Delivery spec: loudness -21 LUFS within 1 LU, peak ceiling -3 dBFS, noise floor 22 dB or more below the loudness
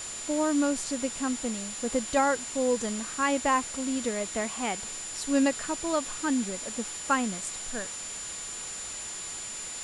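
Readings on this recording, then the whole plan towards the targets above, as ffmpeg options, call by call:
steady tone 7.1 kHz; tone level -37 dBFS; noise floor -38 dBFS; noise floor target -52 dBFS; loudness -29.5 LUFS; peak level -12.0 dBFS; loudness target -21.0 LUFS
-> -af "bandreject=f=7100:w=30"
-af "afftdn=nr=14:nf=-38"
-af "volume=2.66"

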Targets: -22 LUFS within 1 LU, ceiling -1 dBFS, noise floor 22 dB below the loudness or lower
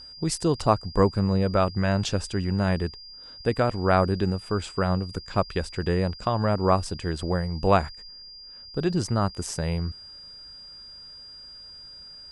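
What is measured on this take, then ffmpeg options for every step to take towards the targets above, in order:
steady tone 4.8 kHz; tone level -42 dBFS; loudness -25.5 LUFS; peak level -6.0 dBFS; loudness target -22.0 LUFS
-> -af "bandreject=f=4800:w=30"
-af "volume=1.5"

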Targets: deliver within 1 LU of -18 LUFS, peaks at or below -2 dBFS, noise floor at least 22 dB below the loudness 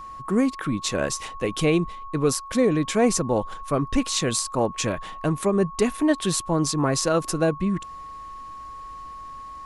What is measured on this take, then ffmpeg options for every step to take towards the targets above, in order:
steady tone 1.1 kHz; tone level -36 dBFS; loudness -24.0 LUFS; peak level -6.5 dBFS; loudness target -18.0 LUFS
-> -af "bandreject=f=1100:w=30"
-af "volume=2,alimiter=limit=0.794:level=0:latency=1"

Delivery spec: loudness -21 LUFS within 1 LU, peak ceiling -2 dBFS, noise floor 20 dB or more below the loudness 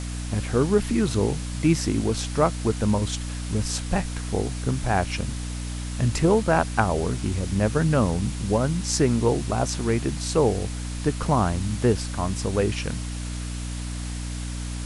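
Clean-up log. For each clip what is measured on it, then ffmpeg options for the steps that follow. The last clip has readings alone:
hum 60 Hz; highest harmonic 300 Hz; hum level -29 dBFS; noise floor -31 dBFS; noise floor target -45 dBFS; loudness -25.0 LUFS; peak level -5.5 dBFS; loudness target -21.0 LUFS
-> -af "bandreject=f=60:t=h:w=4,bandreject=f=120:t=h:w=4,bandreject=f=180:t=h:w=4,bandreject=f=240:t=h:w=4,bandreject=f=300:t=h:w=4"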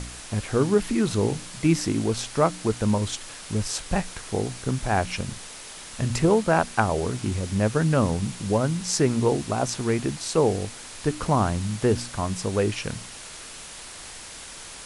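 hum not found; noise floor -41 dBFS; noise floor target -45 dBFS
-> -af "afftdn=nr=6:nf=-41"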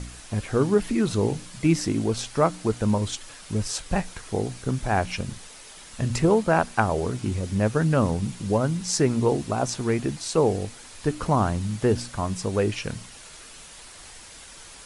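noise floor -45 dBFS; loudness -25.0 LUFS; peak level -5.0 dBFS; loudness target -21.0 LUFS
-> -af "volume=1.58,alimiter=limit=0.794:level=0:latency=1"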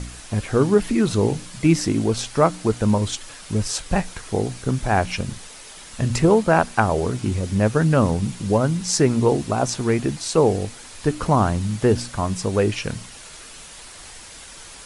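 loudness -21.0 LUFS; peak level -2.0 dBFS; noise floor -41 dBFS

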